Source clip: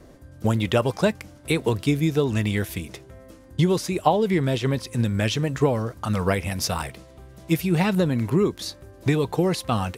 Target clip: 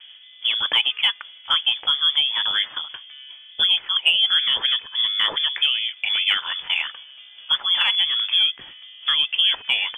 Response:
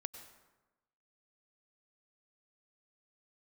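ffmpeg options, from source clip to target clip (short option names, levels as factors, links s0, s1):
-filter_complex "[0:a]acrossover=split=190 2800:gain=0.126 1 0.0708[s0][s1][s2];[s0][s1][s2]amix=inputs=3:normalize=0,acrossover=split=1000[s3][s4];[s3]alimiter=limit=0.133:level=0:latency=1:release=238[s5];[s5][s4]amix=inputs=2:normalize=0,lowpass=f=3100:t=q:w=0.5098,lowpass=f=3100:t=q:w=0.6013,lowpass=f=3100:t=q:w=0.9,lowpass=f=3100:t=q:w=2.563,afreqshift=-3600,acontrast=65"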